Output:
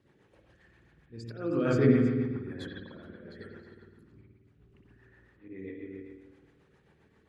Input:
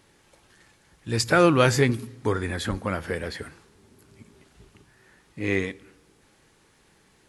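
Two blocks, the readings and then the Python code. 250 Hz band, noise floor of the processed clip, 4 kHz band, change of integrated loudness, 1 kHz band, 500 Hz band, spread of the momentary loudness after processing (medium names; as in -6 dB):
-2.5 dB, -66 dBFS, -19.0 dB, -5.0 dB, -17.0 dB, -7.5 dB, 24 LU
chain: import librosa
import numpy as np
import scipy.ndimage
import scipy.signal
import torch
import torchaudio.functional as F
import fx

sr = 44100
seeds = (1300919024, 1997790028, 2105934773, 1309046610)

y = fx.envelope_sharpen(x, sr, power=1.5)
y = fx.dynamic_eq(y, sr, hz=260.0, q=0.96, threshold_db=-34.0, ratio=4.0, max_db=6)
y = fx.lowpass(y, sr, hz=3600.0, slope=6)
y = y + 10.0 ** (-17.0 / 20.0) * np.pad(y, (int(312 * sr / 1000.0), 0))[:len(y)]
y = fx.auto_swell(y, sr, attack_ms=641.0)
y = scipy.signal.sosfilt(scipy.signal.butter(2, 50.0, 'highpass', fs=sr, output='sos'), y)
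y = fx.notch(y, sr, hz=2100.0, q=29.0)
y = fx.rev_spring(y, sr, rt60_s=1.2, pass_ms=(52,), chirp_ms=40, drr_db=-3.5)
y = fx.rotary(y, sr, hz=7.5)
y = F.gain(torch.from_numpy(y), -6.5).numpy()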